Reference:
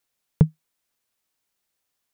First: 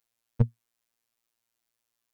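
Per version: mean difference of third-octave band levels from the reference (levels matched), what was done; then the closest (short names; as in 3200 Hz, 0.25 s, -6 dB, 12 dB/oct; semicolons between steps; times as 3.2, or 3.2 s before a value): 3.5 dB: robotiser 116 Hz; gain -2 dB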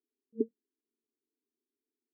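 9.5 dB: FFT band-pass 220–460 Hz; gain +3.5 dB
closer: first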